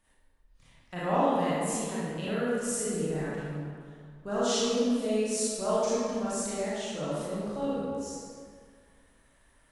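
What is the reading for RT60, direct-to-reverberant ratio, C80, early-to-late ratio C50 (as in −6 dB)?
2.0 s, −10.0 dB, −2.0 dB, −5.5 dB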